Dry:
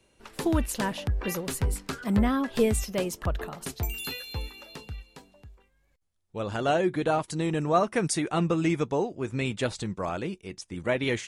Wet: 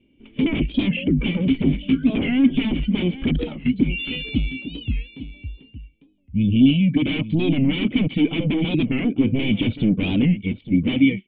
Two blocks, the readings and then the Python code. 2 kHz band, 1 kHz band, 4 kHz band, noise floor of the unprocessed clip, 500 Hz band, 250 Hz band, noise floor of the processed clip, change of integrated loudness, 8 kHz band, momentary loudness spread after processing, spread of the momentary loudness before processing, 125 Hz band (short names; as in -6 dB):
+5.5 dB, -10.5 dB, +9.0 dB, -68 dBFS, -2.0 dB, +12.0 dB, -56 dBFS, +7.5 dB, under -40 dB, 10 LU, 13 LU, +8.5 dB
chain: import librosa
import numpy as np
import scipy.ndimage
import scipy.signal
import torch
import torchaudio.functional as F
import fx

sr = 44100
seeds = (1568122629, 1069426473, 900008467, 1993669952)

p1 = fx.fade_out_tail(x, sr, length_s=0.6)
p2 = fx.spec_box(p1, sr, start_s=5.88, length_s=1.06, low_hz=280.0, high_hz=2200.0, gain_db=-25)
p3 = fx.noise_reduce_blind(p2, sr, reduce_db=14)
p4 = fx.rider(p3, sr, range_db=3, speed_s=0.5)
p5 = p3 + (p4 * librosa.db_to_amplitude(1.0))
p6 = fx.vibrato(p5, sr, rate_hz=1.5, depth_cents=13.0)
p7 = fx.fold_sine(p6, sr, drive_db=18, ceiling_db=-5.5)
p8 = fx.formant_cascade(p7, sr, vowel='i')
p9 = p8 + fx.echo_single(p8, sr, ms=851, db=-14.0, dry=0)
y = fx.record_warp(p9, sr, rpm=45.0, depth_cents=160.0)